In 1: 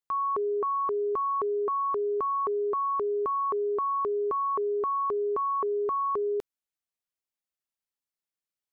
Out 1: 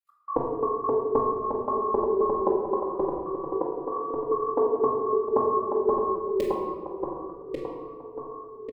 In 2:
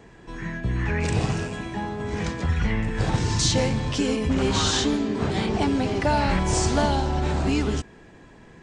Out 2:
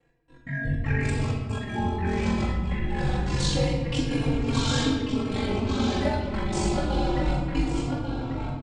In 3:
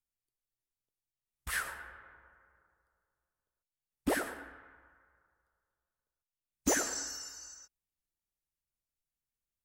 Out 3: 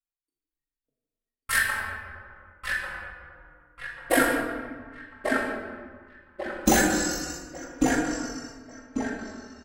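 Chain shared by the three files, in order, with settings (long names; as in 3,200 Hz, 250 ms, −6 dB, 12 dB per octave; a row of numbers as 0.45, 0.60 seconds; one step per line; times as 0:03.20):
noise reduction from a noise print of the clip's start 18 dB
parametric band 6,000 Hz −5 dB 0.37 octaves
downward compressor, threshold −25 dBFS
gate pattern "x..x.xxx.xxxx" 161 BPM −60 dB
ring modulation 24 Hz
feedback echo with a low-pass in the loop 1,143 ms, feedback 42%, low-pass 3,500 Hz, level −4 dB
rectangular room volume 910 cubic metres, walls mixed, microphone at 2.2 metres
barber-pole flanger 3.7 ms −0.26 Hz
loudness normalisation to −27 LKFS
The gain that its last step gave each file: +18.5, +3.5, +15.0 decibels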